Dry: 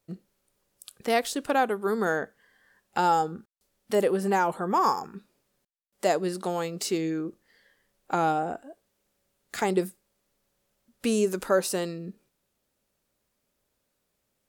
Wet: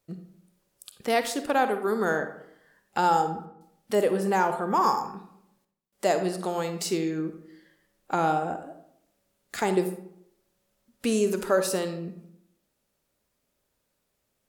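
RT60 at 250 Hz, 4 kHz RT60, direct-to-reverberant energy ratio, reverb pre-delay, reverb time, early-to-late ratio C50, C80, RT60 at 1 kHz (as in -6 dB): 0.85 s, 0.40 s, 8.0 dB, 38 ms, 0.75 s, 9.0 dB, 12.0 dB, 0.70 s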